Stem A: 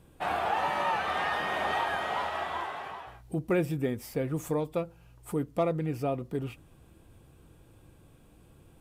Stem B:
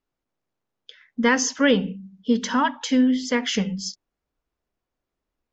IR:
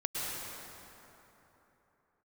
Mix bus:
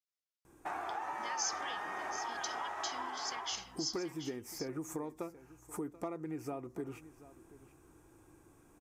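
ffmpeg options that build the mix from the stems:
-filter_complex "[0:a]firequalizer=gain_entry='entry(200,0);entry(330,13);entry(520,2);entry(850,11);entry(2400,11);entry(4500,-7)':delay=0.05:min_phase=1,acompressor=threshold=-27dB:ratio=5,highshelf=f=4.3k:t=q:w=3:g=13,adelay=450,volume=-10dB,asplit=2[a][b];[b]volume=-17.5dB[c];[1:a]alimiter=limit=-15dB:level=0:latency=1:release=438,bandpass=f=5.3k:t=q:w=1.5:csg=0,volume=-4.5dB,asplit=2[d][e];[e]volume=-10.5dB[f];[c][f]amix=inputs=2:normalize=0,aecho=0:1:733:1[g];[a][d][g]amix=inputs=3:normalize=0"

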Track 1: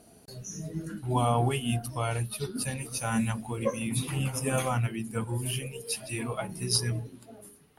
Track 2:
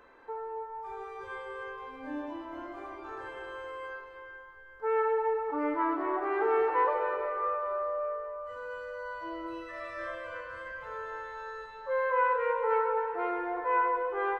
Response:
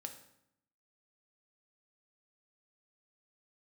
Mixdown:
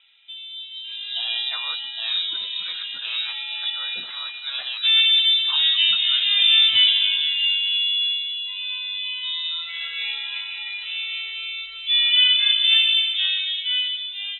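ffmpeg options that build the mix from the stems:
-filter_complex "[0:a]highpass=160,volume=-11dB[a];[1:a]lowshelf=f=360:g=5,volume=-1.5dB[b];[a][b]amix=inputs=2:normalize=0,dynaudnorm=f=110:g=17:m=11dB,lowpass=f=3.4k:t=q:w=0.5098,lowpass=f=3.4k:t=q:w=0.6013,lowpass=f=3.4k:t=q:w=0.9,lowpass=f=3.4k:t=q:w=2.563,afreqshift=-4000"

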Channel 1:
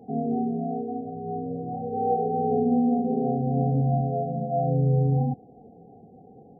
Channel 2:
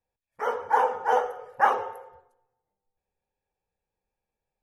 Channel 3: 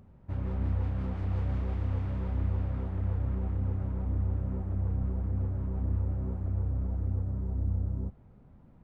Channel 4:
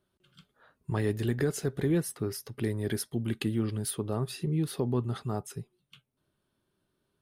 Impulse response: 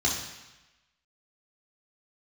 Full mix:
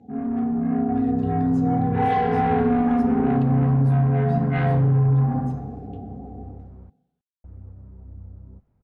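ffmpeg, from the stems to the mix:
-filter_complex "[0:a]asoftclip=type=tanh:threshold=-24.5dB,dynaudnorm=f=520:g=3:m=12dB,volume=-4dB,asplit=2[a][b];[b]volume=-7.5dB[c];[1:a]acompressor=mode=upward:threshold=-32dB:ratio=2.5,adelay=1250,volume=-14dB[d];[2:a]adelay=500,volume=-10.5dB,asplit=3[e][f][g];[e]atrim=end=6.9,asetpts=PTS-STARTPTS,afade=t=out:st=6.896:d=0.004:c=hsin[h];[f]atrim=start=6.9:end=7.44,asetpts=PTS-STARTPTS,volume=0[i];[g]atrim=start=7.44,asetpts=PTS-STARTPTS,afade=t=in:d=0.004:c=hsin[j];[h][i][j]concat=n=3:v=0:a=1[k];[3:a]volume=-12.5dB,asplit=2[l][m];[m]volume=-21dB[n];[4:a]atrim=start_sample=2205[o];[c][n]amix=inputs=2:normalize=0[p];[p][o]afir=irnorm=-1:irlink=0[q];[a][d][k][l][q]amix=inputs=5:normalize=0,lowpass=5.8k,acompressor=threshold=-17dB:ratio=4"

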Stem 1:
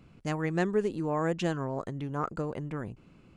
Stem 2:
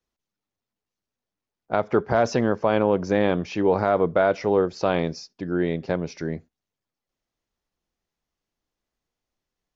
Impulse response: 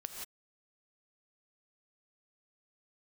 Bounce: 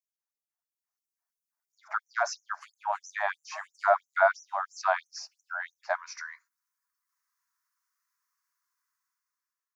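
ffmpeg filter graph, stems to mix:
-filter_complex "[0:a]adelay=2350,volume=-5.5dB[a];[1:a]highshelf=f=2.4k:t=q:w=1.5:g=-13.5,aexciter=amount=7.7:drive=2.6:freq=4.3k,volume=-3dB,asplit=2[b][c];[c]apad=whole_len=252166[d];[a][d]sidechaincompress=threshold=-34dB:ratio=6:attack=16:release=273[e];[e][b]amix=inputs=2:normalize=0,dynaudnorm=f=260:g=7:m=12.5dB,flanger=delay=1:depth=1.1:regen=-81:speed=0.28:shape=triangular,afftfilt=real='re*gte(b*sr/1024,580*pow(5800/580,0.5+0.5*sin(2*PI*3*pts/sr)))':imag='im*gte(b*sr/1024,580*pow(5800/580,0.5+0.5*sin(2*PI*3*pts/sr)))':win_size=1024:overlap=0.75"

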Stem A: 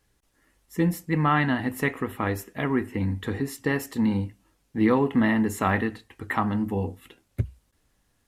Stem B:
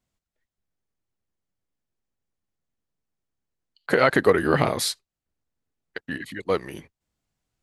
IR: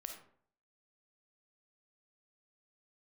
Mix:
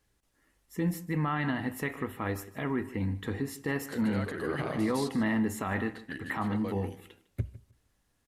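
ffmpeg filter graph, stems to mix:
-filter_complex "[0:a]volume=-6dB,asplit=4[a][b][c][d];[b]volume=-12.5dB[e];[c]volume=-18dB[f];[1:a]alimiter=limit=-15dB:level=0:latency=1:release=60,volume=-8.5dB,asplit=3[g][h][i];[h]volume=-15.5dB[j];[i]volume=-4dB[k];[d]apad=whole_len=336166[l];[g][l]sidechaincompress=threshold=-47dB:ratio=8:attack=16:release=198[m];[2:a]atrim=start_sample=2205[n];[e][j]amix=inputs=2:normalize=0[o];[o][n]afir=irnorm=-1:irlink=0[p];[f][k]amix=inputs=2:normalize=0,aecho=0:1:154|308|462:1|0.18|0.0324[q];[a][m][p][q]amix=inputs=4:normalize=0,alimiter=limit=-21dB:level=0:latency=1:release=21"

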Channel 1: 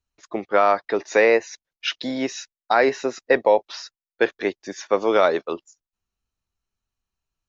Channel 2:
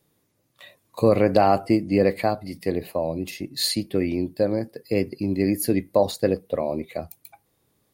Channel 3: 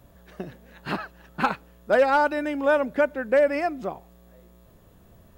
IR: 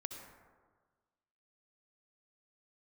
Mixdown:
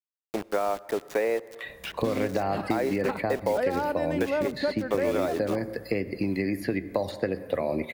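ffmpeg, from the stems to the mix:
-filter_complex "[0:a]acrusher=bits=4:mix=0:aa=0.000001,volume=-4dB,asplit=2[a][b];[b]volume=-15.5dB[c];[1:a]equalizer=f=1.8k:w=1.2:g=11.5,acrossover=split=120|4900[d][e][f];[d]acompressor=threshold=-40dB:ratio=4[g];[e]acompressor=threshold=-22dB:ratio=4[h];[f]acompressor=threshold=-49dB:ratio=4[i];[g][h][i]amix=inputs=3:normalize=0,adelay=1000,volume=0.5dB,asplit=2[j][k];[k]volume=-8dB[l];[2:a]adelay=1650,volume=-2.5dB,asplit=2[m][n];[n]volume=-15.5dB[o];[3:a]atrim=start_sample=2205[p];[c][l][o]amix=inputs=3:normalize=0[q];[q][p]afir=irnorm=-1:irlink=0[r];[a][j][m][r]amix=inputs=4:normalize=0,acrossover=split=810|2400[s][t][u];[s]acompressor=threshold=-24dB:ratio=4[v];[t]acompressor=threshold=-39dB:ratio=4[w];[u]acompressor=threshold=-45dB:ratio=4[x];[v][w][x]amix=inputs=3:normalize=0"

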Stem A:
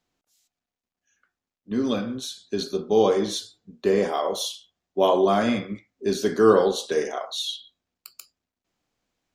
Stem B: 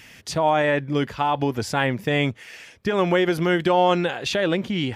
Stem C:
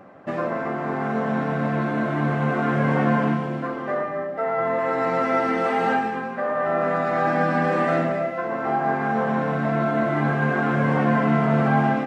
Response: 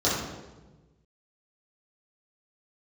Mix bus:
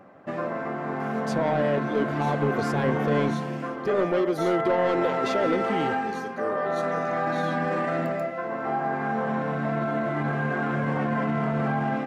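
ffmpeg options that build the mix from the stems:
-filter_complex "[0:a]volume=-16dB[a];[1:a]equalizer=f=440:t=o:w=1.4:g=13,asoftclip=type=tanh:threshold=-9dB,adelay=1000,volume=-10.5dB[b];[2:a]volume=-4dB[c];[a][c]amix=inputs=2:normalize=0,alimiter=limit=-18dB:level=0:latency=1:release=16,volume=0dB[d];[b][d]amix=inputs=2:normalize=0"

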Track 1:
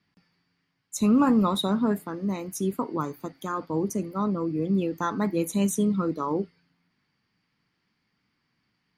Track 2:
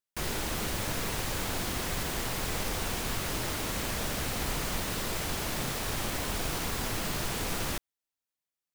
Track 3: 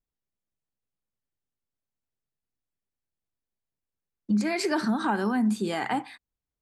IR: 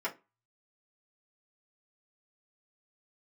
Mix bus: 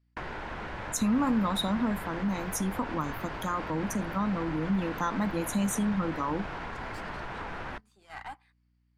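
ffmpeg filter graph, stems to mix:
-filter_complex "[0:a]acompressor=threshold=-31dB:ratio=2,aeval=exprs='val(0)+0.00178*(sin(2*PI*60*n/s)+sin(2*PI*2*60*n/s)/2+sin(2*PI*3*60*n/s)/3+sin(2*PI*4*60*n/s)/4+sin(2*PI*5*60*n/s)/5)':c=same,equalizer=f=400:w=4.6:g=-13,volume=2.5dB,asplit=2[a][b];[1:a]lowpass=2.3k,equalizer=f=1.2k:t=o:w=0.28:g=-9,volume=3dB[c];[2:a]highpass=f=1.2k:p=1,aeval=exprs='(tanh(31.6*val(0)+0.75)-tanh(0.75))/31.6':c=same,adelay=2350,volume=-6.5dB[d];[b]apad=whole_len=385629[e];[c][e]sidechaincompress=threshold=-33dB:ratio=8:attack=16:release=267[f];[f][d]amix=inputs=2:normalize=0,equalizer=f=1.2k:w=0.92:g=12.5,acompressor=threshold=-35dB:ratio=8,volume=0dB[g];[a][g]amix=inputs=2:normalize=0,agate=range=-16dB:threshold=-39dB:ratio=16:detection=peak"

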